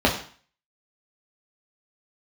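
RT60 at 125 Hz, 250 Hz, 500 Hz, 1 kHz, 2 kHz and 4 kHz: 0.45, 0.45, 0.45, 0.50, 0.50, 0.45 s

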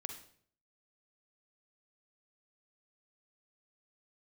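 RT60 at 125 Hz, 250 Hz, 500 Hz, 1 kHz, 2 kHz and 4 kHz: 0.70, 0.65, 0.60, 0.50, 0.50, 0.50 s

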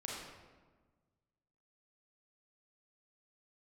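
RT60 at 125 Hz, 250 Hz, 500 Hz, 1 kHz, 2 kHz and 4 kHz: 2.0, 1.8, 1.4, 1.3, 1.1, 0.85 s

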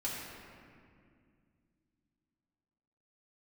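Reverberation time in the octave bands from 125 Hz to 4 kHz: 3.4, 3.4, 2.4, 2.0, 2.0, 1.4 s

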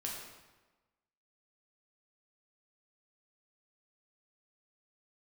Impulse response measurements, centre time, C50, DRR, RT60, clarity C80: 62 ms, 2.0 dB, -3.0 dB, 1.2 s, 4.0 dB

